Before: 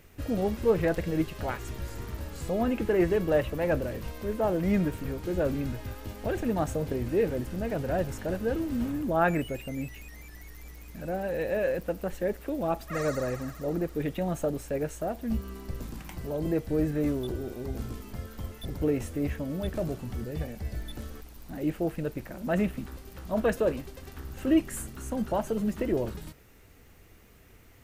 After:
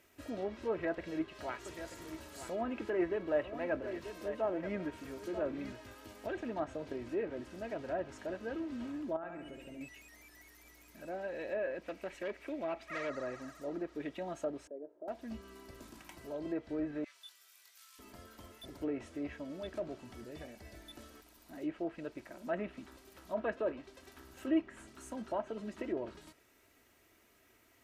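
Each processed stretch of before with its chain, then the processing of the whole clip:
0:00.72–0:05.73: high-shelf EQ 7,900 Hz +9.5 dB + single-tap delay 937 ms −10.5 dB
0:09.16–0:09.81: spectral tilt −2 dB per octave + downward compressor 8 to 1, threshold −33 dBFS + flutter between parallel walls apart 12 metres, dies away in 0.87 s
0:11.83–0:13.10: parametric band 2,300 Hz +10.5 dB 0.53 octaves + hard clipping −25 dBFS
0:14.67–0:15.08: downward compressor 2 to 1, threshold −40 dBFS + flat-topped band-pass 450 Hz, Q 1.2 + low-shelf EQ 400 Hz +6 dB
0:17.04–0:17.99: Bessel high-pass filter 2,300 Hz, order 4 + double-tracking delay 22 ms −3.5 dB
whole clip: high-pass filter 390 Hz 6 dB per octave; comb filter 3.1 ms, depth 42%; treble cut that deepens with the level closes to 2,300 Hz, closed at −25.5 dBFS; level −7 dB

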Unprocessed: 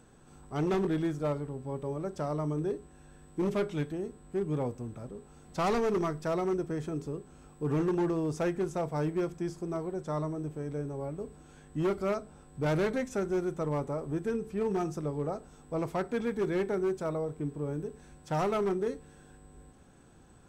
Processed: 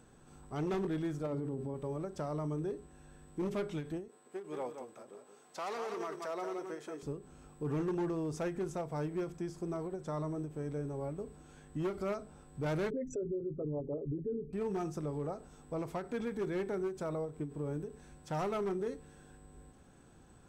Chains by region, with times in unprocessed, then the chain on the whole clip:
0:01.26–0:01.74: mains-hum notches 50/100/150/200/250/300/350/400 Hz + hollow resonant body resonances 220/330 Hz, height 11 dB, ringing for 25 ms
0:04.08–0:07.03: high-pass filter 490 Hz + single-tap delay 175 ms −8 dB
0:12.90–0:14.53: spectral envelope exaggerated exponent 3 + comb filter 7.2 ms, depth 58%
whole clip: brickwall limiter −28 dBFS; every ending faded ahead of time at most 160 dB per second; level −2 dB

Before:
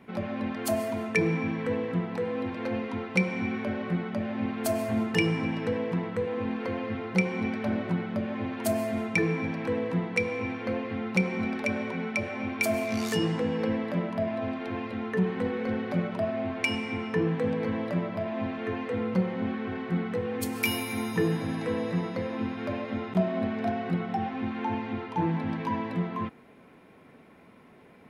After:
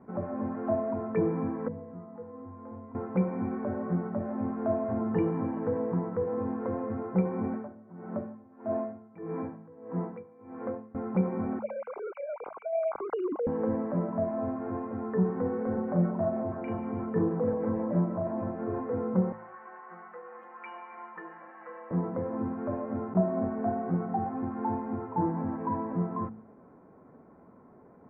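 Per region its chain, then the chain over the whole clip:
0:01.68–0:02.95: parametric band 230 Hz +8.5 dB 0.33 octaves + tuned comb filter 95 Hz, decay 0.49 s, harmonics odd, mix 90%
0:07.52–0:10.95: high-pass filter 160 Hz 6 dB per octave + tremolo with a sine in dB 1.6 Hz, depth 23 dB
0:11.59–0:13.47: three sine waves on the formant tracks + Butterworth band-reject 1,800 Hz, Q 3.6 + compressor whose output falls as the input rises −29 dBFS
0:15.73–0:18.80: auto-filter notch saw down 6.3 Hz 770–5,000 Hz + double-tracking delay 40 ms −3 dB
0:19.32–0:21.91: high-pass filter 1,300 Hz + comb filter 5.6 ms, depth 89%
whole clip: inverse Chebyshev low-pass filter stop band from 4,200 Hz, stop band 60 dB; hum removal 54.36 Hz, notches 4

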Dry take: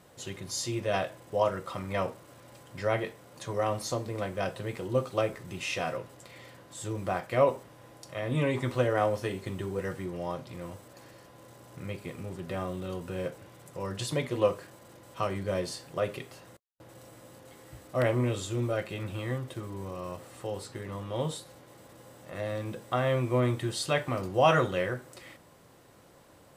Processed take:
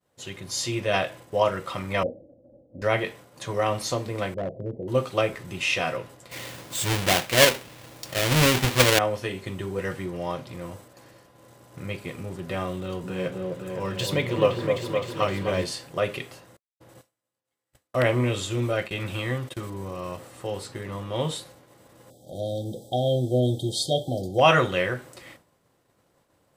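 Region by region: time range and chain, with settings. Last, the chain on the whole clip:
0:02.03–0:02.82: Butterworth low-pass 680 Hz 72 dB per octave + comb filter 3.7 ms, depth 59%
0:04.34–0:04.88: elliptic low-pass filter 650 Hz, stop band 50 dB + hard clipping −28 dBFS
0:06.31–0:08.99: each half-wave held at its own peak + high-shelf EQ 2,700 Hz +7.5 dB
0:12.78–0:15.64: echo whose low-pass opens from repeat to repeat 258 ms, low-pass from 750 Hz, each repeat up 2 octaves, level −3 dB + linearly interpolated sample-rate reduction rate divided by 2×
0:17.01–0:19.70: noise gate −44 dBFS, range −17 dB + one half of a high-frequency compander encoder only
0:22.10–0:24.41: linear-phase brick-wall band-stop 830–3,100 Hz + hard clipping −16.5 dBFS
whole clip: downward expander −47 dBFS; dynamic equaliser 2,700 Hz, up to +6 dB, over −50 dBFS, Q 1; automatic gain control gain up to 4 dB

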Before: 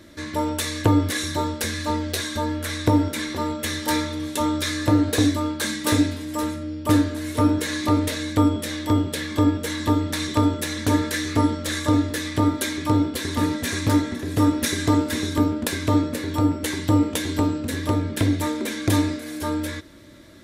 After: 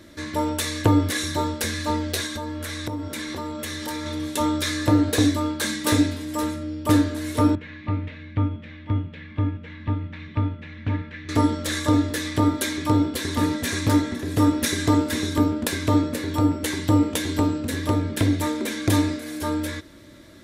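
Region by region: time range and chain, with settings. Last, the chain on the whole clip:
0:02.26–0:04.05: downward compressor 5 to 1, threshold −27 dBFS + steady tone 1,100 Hz −56 dBFS
0:07.55–0:11.29: transistor ladder low-pass 2,900 Hz, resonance 50% + low shelf with overshoot 250 Hz +9.5 dB, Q 1.5 + expander for the loud parts, over −30 dBFS
whole clip: no processing

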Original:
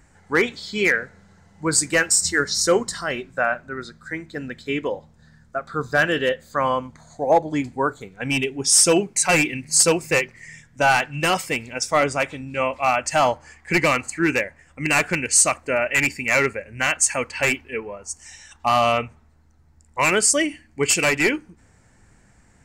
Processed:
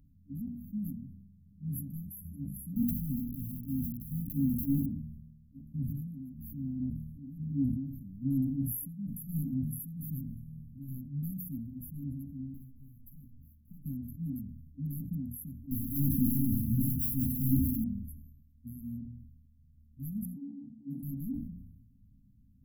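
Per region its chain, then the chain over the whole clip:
0:02.76–0:04.86: leveller curve on the samples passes 3 + upward compression, threshold −29 dBFS + bit-depth reduction 6 bits, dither none
0:05.75–0:10.88: amplitude tremolo 1.1 Hz, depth 89% + envelope flattener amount 50%
0:12.46–0:13.86: lower of the sound and its delayed copy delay 0.59 ms + downward compressor 5 to 1, threshold −37 dBFS
0:15.71–0:17.84: high-shelf EQ 8,400 Hz −5 dB + power curve on the samples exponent 0.35 + echo with a time of its own for lows and highs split 360 Hz, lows 82 ms, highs 192 ms, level −6 dB
0:20.25–0:21.03: high-pass filter 170 Hz 24 dB per octave + high-frequency loss of the air 480 metres + all-pass dispersion lows, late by 86 ms, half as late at 2,100 Hz
whole clip: mains-hum notches 60/120/180/240 Hz; brick-wall band-stop 280–11,000 Hz; level that may fall only so fast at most 48 dB per second; level −5.5 dB

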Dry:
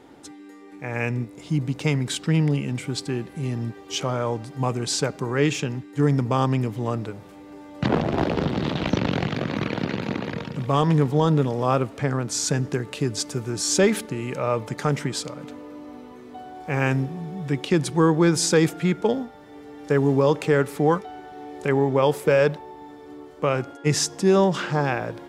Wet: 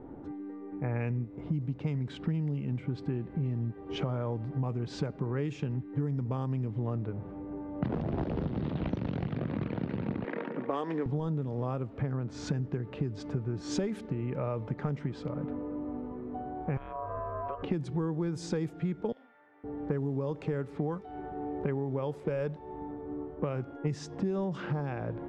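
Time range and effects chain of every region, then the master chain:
0:10.24–0:11.06: high-pass filter 280 Hz 24 dB per octave + parametric band 1,900 Hz +6.5 dB 0.74 octaves
0:16.77–0:17.63: downward compressor 12 to 1, threshold −28 dBFS + ring modulation 840 Hz
0:19.12–0:19.64: high-pass with resonance 2,100 Hz, resonance Q 1.7 + spectral tilt −4 dB per octave + double-tracking delay 44 ms −3.5 dB
whole clip: low-pass that shuts in the quiet parts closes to 1,200 Hz, open at −14.5 dBFS; spectral tilt −3 dB per octave; downward compressor 10 to 1, threshold −27 dBFS; level −2 dB

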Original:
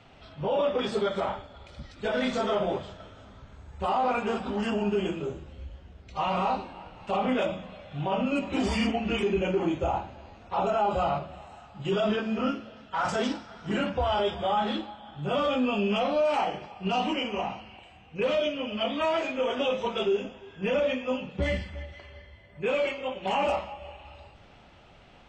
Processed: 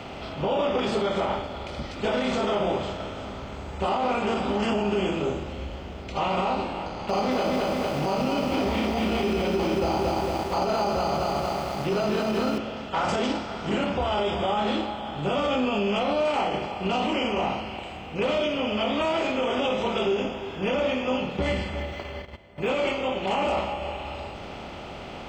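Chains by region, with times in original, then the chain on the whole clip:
0:06.86–0:12.58: bad sample-rate conversion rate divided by 8×, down filtered, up hold + low-pass filter 5,000 Hz 24 dB per octave + feedback echo at a low word length 227 ms, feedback 55%, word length 8 bits, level −4 dB
0:21.80–0:22.68: noise gate −49 dBFS, range −21 dB + linearly interpolated sample-rate reduction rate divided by 2×
whole clip: compressor on every frequency bin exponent 0.6; parametric band 1,600 Hz −4 dB 0.23 octaves; brickwall limiter −16.5 dBFS

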